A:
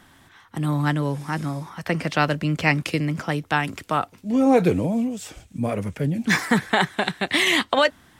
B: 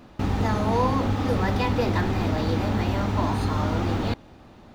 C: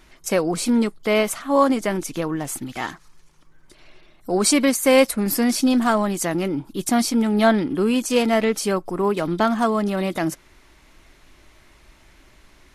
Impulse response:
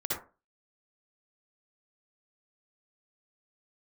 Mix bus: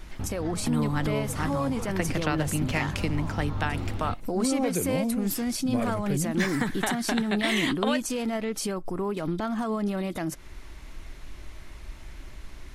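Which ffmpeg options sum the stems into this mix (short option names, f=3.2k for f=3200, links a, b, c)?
-filter_complex "[0:a]acompressor=threshold=-20dB:ratio=6,adelay=100,volume=-4dB[a];[1:a]lowpass=5.5k,volume=-12dB[b];[2:a]alimiter=limit=-15.5dB:level=0:latency=1:release=424,volume=2.5dB[c];[b][c]amix=inputs=2:normalize=0,lowshelf=f=120:g=11.5,alimiter=limit=-21dB:level=0:latency=1:release=159,volume=0dB[d];[a][d]amix=inputs=2:normalize=0"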